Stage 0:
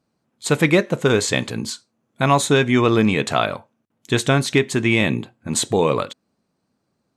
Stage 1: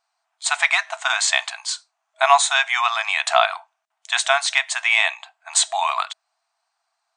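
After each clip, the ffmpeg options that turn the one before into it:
-af "afftfilt=real='re*between(b*sr/4096,640,9600)':imag='im*between(b*sr/4096,640,9600)':win_size=4096:overlap=0.75,volume=4dB"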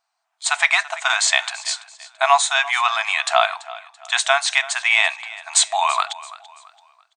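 -af "dynaudnorm=f=120:g=7:m=10dB,aecho=1:1:335|670|1005:0.126|0.0453|0.0163,volume=-1dB"

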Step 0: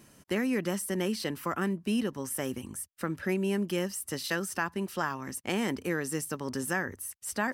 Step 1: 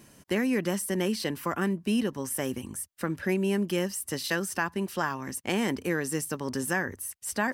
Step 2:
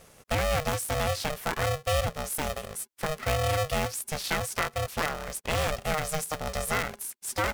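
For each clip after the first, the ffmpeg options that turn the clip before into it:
-af "bandreject=f=1.3k:w=15,volume=2.5dB"
-af "aeval=exprs='val(0)*sgn(sin(2*PI*310*n/s))':c=same"

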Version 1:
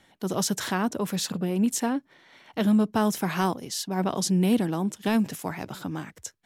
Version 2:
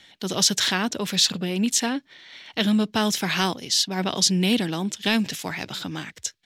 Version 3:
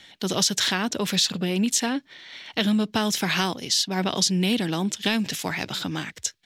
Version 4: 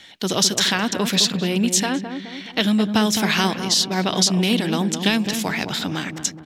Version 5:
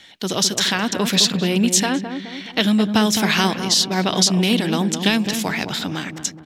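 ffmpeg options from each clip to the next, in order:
-af "firequalizer=gain_entry='entry(1100,0);entry(1800,8);entry(3600,15);entry(10000,1)':delay=0.05:min_phase=1"
-af "acompressor=threshold=-23dB:ratio=2.5,volume=2.5dB"
-filter_complex "[0:a]lowshelf=f=160:g=-3,asplit=2[a][b];[b]adelay=211,lowpass=f=850:p=1,volume=-6dB,asplit=2[c][d];[d]adelay=211,lowpass=f=850:p=1,volume=0.55,asplit=2[e][f];[f]adelay=211,lowpass=f=850:p=1,volume=0.55,asplit=2[g][h];[h]adelay=211,lowpass=f=850:p=1,volume=0.55,asplit=2[i][j];[j]adelay=211,lowpass=f=850:p=1,volume=0.55,asplit=2[k][l];[l]adelay=211,lowpass=f=850:p=1,volume=0.55,asplit=2[m][n];[n]adelay=211,lowpass=f=850:p=1,volume=0.55[o];[a][c][e][g][i][k][m][o]amix=inputs=8:normalize=0,volume=4dB"
-af "dynaudnorm=f=210:g=9:m=11.5dB,volume=-1dB"

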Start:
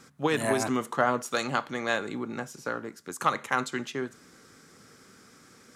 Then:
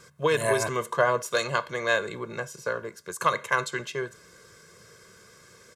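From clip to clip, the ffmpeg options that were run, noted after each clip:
-af "aecho=1:1:1.9:0.89"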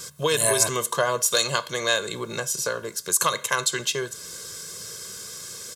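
-af "acompressor=threshold=-40dB:ratio=1.5,aexciter=amount=2.3:drive=8.6:freq=3k,volume=7dB"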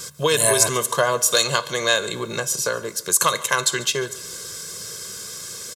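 -af "aecho=1:1:143|286|429|572:0.1|0.047|0.0221|0.0104,volume=3.5dB"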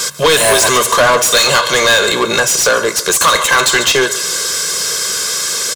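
-filter_complex "[0:a]bandreject=f=60:t=h:w=6,bandreject=f=120:t=h:w=6,asplit=2[a][b];[b]highpass=f=720:p=1,volume=28dB,asoftclip=type=tanh:threshold=-1.5dB[c];[a][c]amix=inputs=2:normalize=0,lowpass=f=5.4k:p=1,volume=-6dB"

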